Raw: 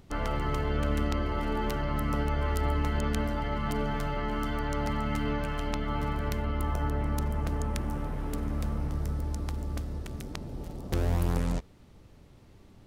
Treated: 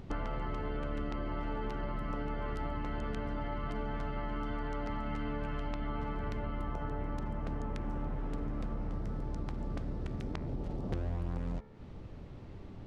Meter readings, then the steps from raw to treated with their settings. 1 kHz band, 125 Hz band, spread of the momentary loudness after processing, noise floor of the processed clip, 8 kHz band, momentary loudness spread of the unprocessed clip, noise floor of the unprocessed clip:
-6.5 dB, -8.0 dB, 2 LU, -47 dBFS, under -15 dB, 6 LU, -54 dBFS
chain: de-hum 72.15 Hz, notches 34; compression, threshold -41 dBFS, peak gain reduction 17 dB; tape spacing loss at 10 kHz 22 dB; trim +8 dB

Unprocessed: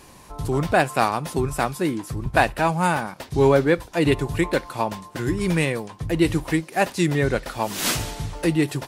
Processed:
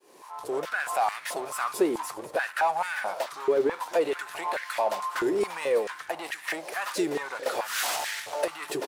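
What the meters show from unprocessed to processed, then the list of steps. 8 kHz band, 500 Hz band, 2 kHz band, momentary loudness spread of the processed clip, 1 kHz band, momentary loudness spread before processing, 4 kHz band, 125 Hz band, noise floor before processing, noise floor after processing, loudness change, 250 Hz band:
-4.5 dB, -4.5 dB, -5.0 dB, 7 LU, -4.5 dB, 8 LU, -5.0 dB, under -25 dB, -47 dBFS, -46 dBFS, -6.5 dB, -12.0 dB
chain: fade-in on the opening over 0.82 s; level rider gain up to 6.5 dB; peak limiter -12 dBFS, peak gain reduction 10.5 dB; compression, threshold -22 dBFS, peak gain reduction 6 dB; power-law waveshaper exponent 0.7; frequency-shifting echo 200 ms, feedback 49%, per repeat -150 Hz, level -14.5 dB; step-sequenced high-pass 4.6 Hz 400–1800 Hz; trim -7.5 dB

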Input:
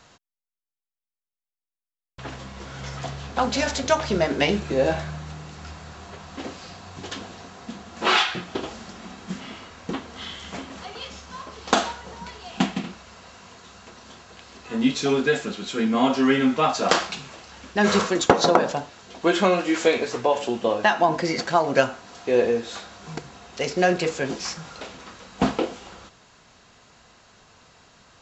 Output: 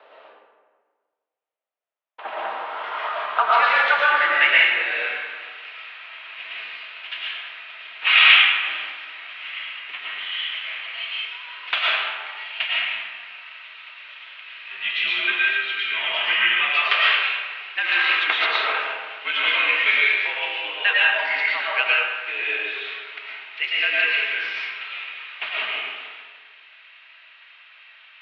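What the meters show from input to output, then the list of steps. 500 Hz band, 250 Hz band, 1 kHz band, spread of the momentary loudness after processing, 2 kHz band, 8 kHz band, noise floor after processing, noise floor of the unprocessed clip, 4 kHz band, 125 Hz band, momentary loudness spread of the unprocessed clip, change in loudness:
-11.5 dB, under -25 dB, 0.0 dB, 19 LU, +11.0 dB, under -25 dB, -66 dBFS, under -85 dBFS, +8.0 dB, under -35 dB, 20 LU, +3.0 dB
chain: high-pass sweep 590 Hz -> 2.4 kHz, 1.27–5.14 s; mistuned SSB -59 Hz 310–3300 Hz; algorithmic reverb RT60 1.6 s, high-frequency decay 0.55×, pre-delay 70 ms, DRR -6 dB; trim +1.5 dB

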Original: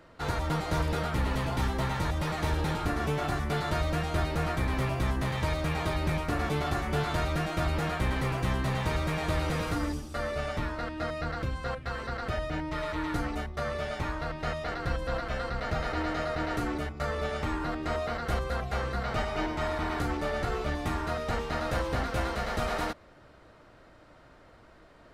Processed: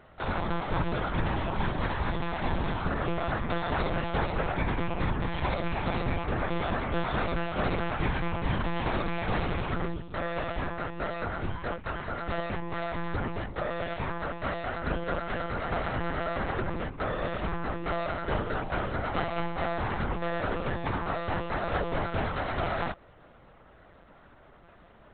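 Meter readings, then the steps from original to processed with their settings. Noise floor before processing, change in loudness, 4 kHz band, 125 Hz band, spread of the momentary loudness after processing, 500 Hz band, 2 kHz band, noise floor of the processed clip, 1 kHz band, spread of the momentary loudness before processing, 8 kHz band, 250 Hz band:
-55 dBFS, -0.5 dB, -2.5 dB, -2.0 dB, 4 LU, +0.5 dB, +0.5 dB, -55 dBFS, +1.0 dB, 4 LU, under -35 dB, 0.0 dB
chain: peaking EQ 900 Hz +2 dB 0.82 oct; monotone LPC vocoder at 8 kHz 170 Hz

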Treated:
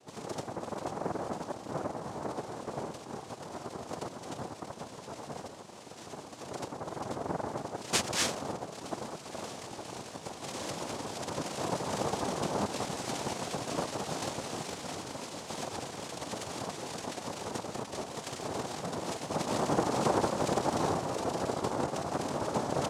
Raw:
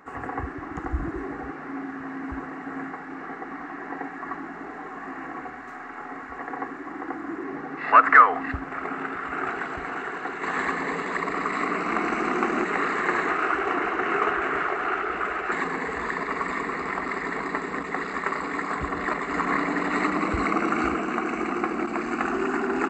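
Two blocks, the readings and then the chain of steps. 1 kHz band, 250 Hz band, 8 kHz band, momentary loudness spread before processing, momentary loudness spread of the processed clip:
-11.0 dB, -8.0 dB, no reading, 12 LU, 12 LU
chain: vowel filter u; noise-vocoded speech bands 2; trim +2.5 dB

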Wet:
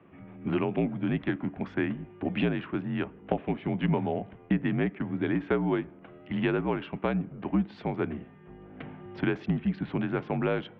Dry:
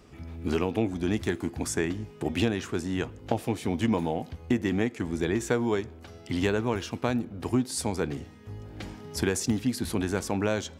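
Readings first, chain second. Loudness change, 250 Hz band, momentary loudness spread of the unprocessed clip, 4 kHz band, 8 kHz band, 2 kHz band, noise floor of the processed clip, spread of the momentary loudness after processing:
-1.0 dB, -0.5 dB, 10 LU, -7.5 dB, under -40 dB, -1.0 dB, -52 dBFS, 13 LU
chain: local Wiener filter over 9 samples; mistuned SSB -56 Hz 170–3200 Hz

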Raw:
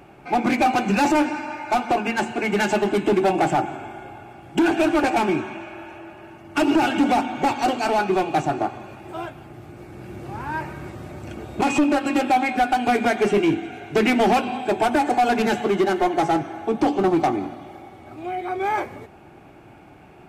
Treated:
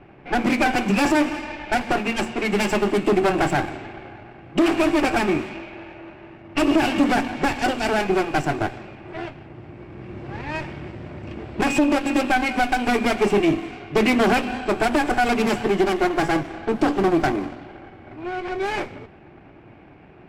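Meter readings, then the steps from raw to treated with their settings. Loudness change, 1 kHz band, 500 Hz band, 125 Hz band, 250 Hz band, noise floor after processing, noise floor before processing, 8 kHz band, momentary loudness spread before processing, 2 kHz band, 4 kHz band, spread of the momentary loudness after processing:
0.0 dB, -3.0 dB, 0.0 dB, +2.0 dB, +0.5 dB, -47 dBFS, -47 dBFS, +1.0 dB, 17 LU, +2.0 dB, +2.0 dB, 17 LU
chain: comb filter that takes the minimum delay 0.38 ms; level-controlled noise filter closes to 2.2 kHz, open at -20 dBFS; trim +1 dB

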